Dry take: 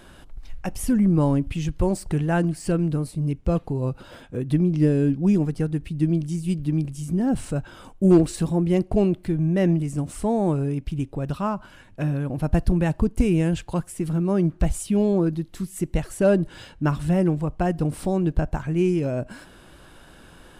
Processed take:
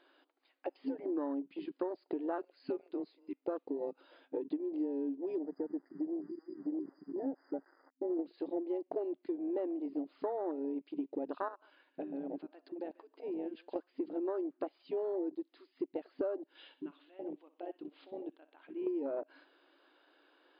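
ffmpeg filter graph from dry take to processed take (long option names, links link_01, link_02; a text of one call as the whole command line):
ffmpeg -i in.wav -filter_complex "[0:a]asettb=1/sr,asplit=3[link_01][link_02][link_03];[link_01]atrim=end=2.384[link_04];[link_02]atrim=start=2.38:end=3.44,asetpts=PTS-STARTPTS,afade=type=in:duration=0.004:curve=qsin,afade=type=out:start_time=1.056:duration=0.004:curve=qsin,afreqshift=-130,bandreject=frequency=414.8:width_type=h:width=4,bandreject=frequency=829.6:width_type=h:width=4[link_05];[link_03]atrim=start=3.436[link_06];[link_04][link_05]acrossfade=duration=0.004:curve1=hsin:curve2=qsin[link_07];[link_07][link_06]acrossfade=duration=0.004:curve1=qsin:curve2=hsin,asettb=1/sr,asplit=3[link_08][link_09][link_10];[link_08]atrim=end=5.384[link_11];[link_09]atrim=start=5.38:end=8.19,asetpts=PTS-STARTPTS,afade=type=in:duration=0.004:curve=qsin,afade=type=out:start_time=2.806:duration=0.004:curve=qsin,aeval=exprs='val(0)*gte(abs(val(0)),0.01)':channel_layout=same,acompressor=threshold=-26dB:ratio=2:attack=3.2:release=140:knee=1:detection=peak,asuperstop=centerf=3100:order=20:qfactor=1.1[link_12];[link_10]atrim=start=8.186[link_13];[link_11][link_12]acrossfade=duration=0.004:curve1=hsin:curve2=qsin[link_14];[link_14][link_13]acrossfade=duration=0.004:curve1=qsin:curve2=hsin,asettb=1/sr,asplit=3[link_15][link_16][link_17];[link_15]atrim=end=11.484[link_18];[link_16]atrim=start=11.48:end=13.76,asetpts=PTS-STARTPTS,afade=type=in:duration=0.004:curve=qsin,afade=type=out:start_time=2.276:duration=0.004:curve=qsin,highpass=130,acompressor=threshold=-31dB:ratio=8:attack=3.2:release=140:knee=1:detection=peak,aecho=1:1:142:0.224,atrim=end_sample=100548[link_19];[link_17]atrim=start=13.756[link_20];[link_18][link_19]acrossfade=duration=0.004:curve1=hsin:curve2=qsin[link_21];[link_21][link_20]acrossfade=duration=0.004:curve1=qsin:curve2=hsin,asettb=1/sr,asplit=3[link_22][link_23][link_24];[link_22]atrim=end=16.554[link_25];[link_23]atrim=start=16.55:end=18.87,asetpts=PTS-STARTPTS,afade=type=in:duration=0.004:curve=qsin,afade=type=out:start_time=2.316:duration=0.004:curve=qsin,acompressor=threshold=-36dB:ratio=4:attack=3.2:release=140:knee=1:detection=peak,lowpass=frequency=3300:width_type=q:width=2.7,aecho=1:1:61|122|183|244:0.2|0.0778|0.0303|0.0118,atrim=end_sample=102312[link_26];[link_24]atrim=start=18.866[link_27];[link_25][link_26]acrossfade=duration=0.004:curve1=hsin:curve2=qsin[link_28];[link_28][link_27]acrossfade=duration=0.004:curve1=qsin:curve2=hsin,afftfilt=real='re*between(b*sr/4096,260,5000)':imag='im*between(b*sr/4096,260,5000)':win_size=4096:overlap=0.75,afwtdn=0.0355,acompressor=threshold=-33dB:ratio=12" out.wav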